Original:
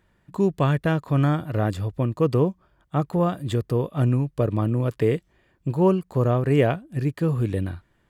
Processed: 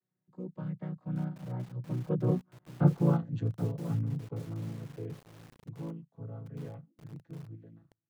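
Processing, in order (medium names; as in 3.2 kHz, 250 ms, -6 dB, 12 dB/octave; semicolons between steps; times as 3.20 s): vocoder on a held chord major triad, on A#2; Doppler pass-by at 2.82 s, 19 m/s, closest 6.1 m; bit-crushed delay 774 ms, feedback 35%, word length 7-bit, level -12.5 dB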